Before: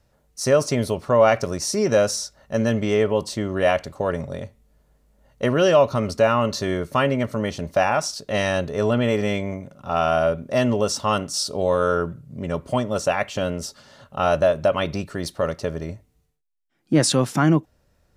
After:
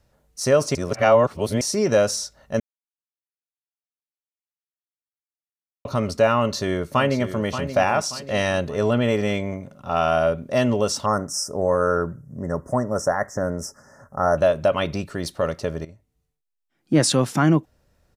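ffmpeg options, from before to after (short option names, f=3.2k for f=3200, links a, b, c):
-filter_complex "[0:a]asplit=2[a][b];[b]afade=t=in:st=6.37:d=0.01,afade=t=out:st=7.43:d=0.01,aecho=0:1:580|1160|1740|2320:0.316228|0.126491|0.0505964|0.0202386[c];[a][c]amix=inputs=2:normalize=0,asettb=1/sr,asplit=3[d][e][f];[d]atrim=end=11.064[g];[e]atrim=start=11.06:end=14.38,asetpts=PTS-STARTPTS,afade=t=in:d=0.004:c=qsin,afade=t=out:st=3.316:d=0.004:c=qsin,asuperstop=centerf=3200:order=20:qfactor=1[h];[f]atrim=start=14.376[i];[g][h]acrossfade=d=0.004:c1=hsin:c2=qsin[j];[j][i]acrossfade=d=0.004:c1=qsin:c2=hsin,asplit=6[k][l][m][n][o][p];[k]atrim=end=0.752[q];[l]atrim=start=0.748:end=1.612,asetpts=PTS-STARTPTS,areverse[r];[m]atrim=start=1.608:end=2.6,asetpts=PTS-STARTPTS,afade=t=out:st=0.988:d=0.004:c=hsin[s];[n]atrim=start=2.6:end=5.85,asetpts=PTS-STARTPTS,volume=0[t];[o]atrim=start=5.85:end=15.85,asetpts=PTS-STARTPTS,afade=t=in:d=0.004:c=hsin,afade=t=out:st=9.996:d=0.004:c=hsin:silence=0.188365[u];[p]atrim=start=15.85,asetpts=PTS-STARTPTS,afade=t=in:d=1.11:silence=0.188365[v];[q][r]acrossfade=d=0.004:c1=hsin:c2=hsin[w];[s][t][u][v]concat=n=4:v=0:a=1[x];[w][x]acrossfade=d=0.004:c1=hsin:c2=hsin"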